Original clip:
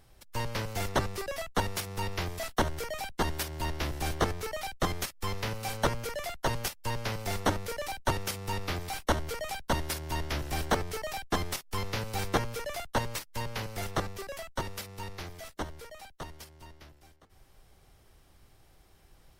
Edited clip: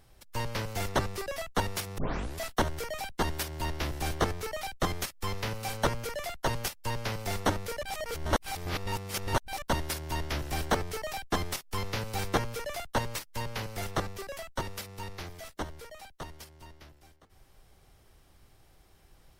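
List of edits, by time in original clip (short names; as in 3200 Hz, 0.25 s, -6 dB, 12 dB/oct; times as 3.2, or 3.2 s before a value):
1.98 tape start 0.41 s
7.83–9.62 reverse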